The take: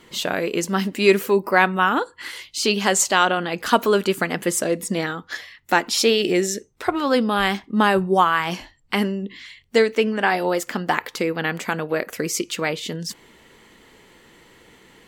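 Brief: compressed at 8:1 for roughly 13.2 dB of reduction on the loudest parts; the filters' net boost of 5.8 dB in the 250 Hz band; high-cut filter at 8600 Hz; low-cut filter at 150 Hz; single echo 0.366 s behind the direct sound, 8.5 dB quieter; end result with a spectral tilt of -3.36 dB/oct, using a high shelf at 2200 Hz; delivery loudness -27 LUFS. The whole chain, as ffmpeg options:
-af "highpass=150,lowpass=8.6k,equalizer=f=250:t=o:g=9,highshelf=f=2.2k:g=5.5,acompressor=threshold=-21dB:ratio=8,aecho=1:1:366:0.376,volume=-1.5dB"

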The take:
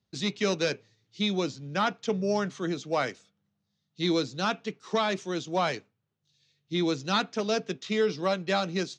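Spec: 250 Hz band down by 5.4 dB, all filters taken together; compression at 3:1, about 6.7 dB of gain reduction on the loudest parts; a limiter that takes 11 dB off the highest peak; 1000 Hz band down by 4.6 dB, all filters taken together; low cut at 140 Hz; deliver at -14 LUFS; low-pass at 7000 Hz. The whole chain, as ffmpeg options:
-af "highpass=140,lowpass=7k,equalizer=f=250:t=o:g=-7,equalizer=f=1k:t=o:g=-6,acompressor=threshold=-34dB:ratio=3,volume=29dB,alimiter=limit=-4.5dB:level=0:latency=1"

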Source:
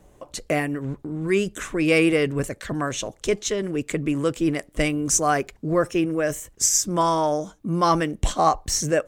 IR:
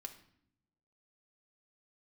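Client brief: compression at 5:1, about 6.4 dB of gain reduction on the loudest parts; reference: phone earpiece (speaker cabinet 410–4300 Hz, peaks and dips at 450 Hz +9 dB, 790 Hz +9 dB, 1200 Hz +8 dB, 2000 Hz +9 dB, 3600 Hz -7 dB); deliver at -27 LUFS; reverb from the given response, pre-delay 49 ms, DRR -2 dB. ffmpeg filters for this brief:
-filter_complex "[0:a]acompressor=threshold=-22dB:ratio=5,asplit=2[a][b];[1:a]atrim=start_sample=2205,adelay=49[c];[b][c]afir=irnorm=-1:irlink=0,volume=6.5dB[d];[a][d]amix=inputs=2:normalize=0,highpass=410,equalizer=f=450:t=q:w=4:g=9,equalizer=f=790:t=q:w=4:g=9,equalizer=f=1.2k:t=q:w=4:g=8,equalizer=f=2k:t=q:w=4:g=9,equalizer=f=3.6k:t=q:w=4:g=-7,lowpass=f=4.3k:w=0.5412,lowpass=f=4.3k:w=1.3066,volume=-6.5dB"

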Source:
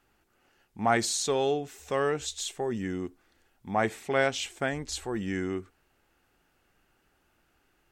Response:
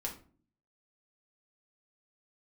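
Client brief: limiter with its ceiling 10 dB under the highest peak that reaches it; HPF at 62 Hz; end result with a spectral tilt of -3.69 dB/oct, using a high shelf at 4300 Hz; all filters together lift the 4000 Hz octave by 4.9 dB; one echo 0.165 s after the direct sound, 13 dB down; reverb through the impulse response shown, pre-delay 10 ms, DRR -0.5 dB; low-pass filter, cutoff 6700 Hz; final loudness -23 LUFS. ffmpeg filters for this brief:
-filter_complex "[0:a]highpass=62,lowpass=6.7k,equalizer=f=4k:t=o:g=8,highshelf=f=4.3k:g=-3,alimiter=limit=-20dB:level=0:latency=1,aecho=1:1:165:0.224,asplit=2[a][b];[1:a]atrim=start_sample=2205,adelay=10[c];[b][c]afir=irnorm=-1:irlink=0,volume=0dB[d];[a][d]amix=inputs=2:normalize=0,volume=5.5dB"

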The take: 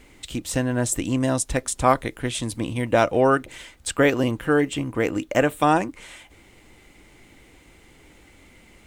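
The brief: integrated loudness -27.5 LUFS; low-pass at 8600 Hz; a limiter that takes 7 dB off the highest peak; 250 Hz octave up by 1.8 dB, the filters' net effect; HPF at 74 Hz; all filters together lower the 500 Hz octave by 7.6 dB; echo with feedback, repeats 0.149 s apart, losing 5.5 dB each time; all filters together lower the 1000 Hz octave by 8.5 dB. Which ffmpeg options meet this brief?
-af "highpass=74,lowpass=8.6k,equalizer=f=250:t=o:g=5,equalizer=f=500:t=o:g=-8.5,equalizer=f=1k:t=o:g=-9,alimiter=limit=-16dB:level=0:latency=1,aecho=1:1:149|298|447|596|745|894|1043:0.531|0.281|0.149|0.079|0.0419|0.0222|0.0118,volume=-1.5dB"

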